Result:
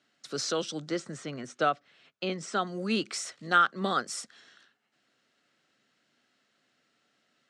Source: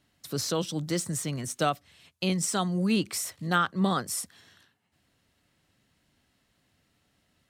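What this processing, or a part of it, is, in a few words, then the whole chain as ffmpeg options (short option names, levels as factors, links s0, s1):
television speaker: -filter_complex "[0:a]highpass=f=180:w=0.5412,highpass=f=180:w=1.3066,equalizer=f=180:t=q:w=4:g=-9,equalizer=f=290:t=q:w=4:g=-4,equalizer=f=950:t=q:w=4:g=-6,equalizer=f=1400:t=q:w=4:g=6,lowpass=f=7400:w=0.5412,lowpass=f=7400:w=1.3066,asettb=1/sr,asplit=3[s0][s1][s2];[s0]atrim=end=0.894[s3];[s1]atrim=start=0.89:end=2.67,asetpts=PTS-STARTPTS,afade=t=in:d=0.004:c=qsin,afade=t=out:st=1.776:d=0.004:c=qsin,aemphasis=mode=reproduction:type=75fm[s4];[s2]atrim=start=2.666[s5];[s3][s4]acrossfade=d=0.004:c1=hsin:c2=qsin[s6];[s6][s5]acrossfade=d=0.004:c1=qsin:c2=hsin"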